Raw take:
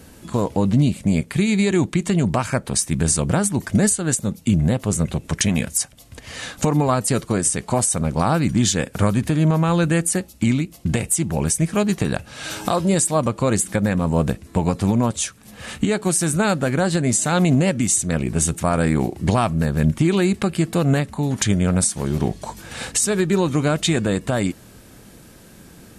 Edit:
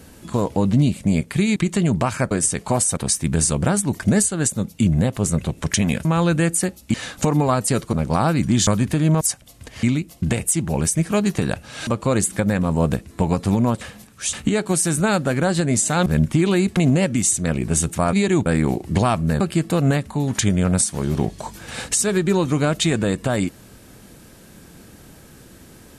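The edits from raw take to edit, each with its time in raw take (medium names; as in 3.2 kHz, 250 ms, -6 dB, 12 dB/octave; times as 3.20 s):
1.56–1.89 s: move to 18.78 s
5.72–6.34 s: swap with 9.57–10.46 s
7.33–7.99 s: move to 2.64 s
8.73–9.03 s: delete
12.50–13.23 s: delete
15.17–15.69 s: reverse
19.72–20.43 s: move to 17.42 s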